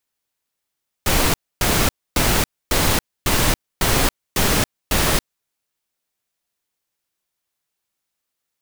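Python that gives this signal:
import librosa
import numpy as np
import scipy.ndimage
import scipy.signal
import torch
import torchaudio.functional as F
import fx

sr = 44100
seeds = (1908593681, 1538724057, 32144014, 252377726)

y = fx.noise_burst(sr, seeds[0], colour='pink', on_s=0.28, off_s=0.27, bursts=8, level_db=-17.0)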